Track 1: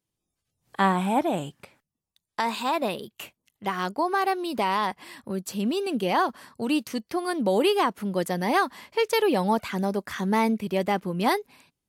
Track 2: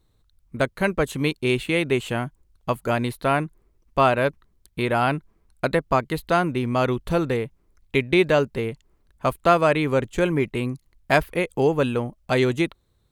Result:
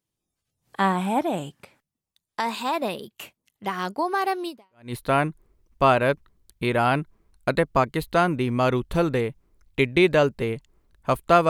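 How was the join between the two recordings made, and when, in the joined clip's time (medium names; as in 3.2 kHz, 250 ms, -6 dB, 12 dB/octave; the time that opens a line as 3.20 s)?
track 1
4.71 s: go over to track 2 from 2.87 s, crossfade 0.46 s exponential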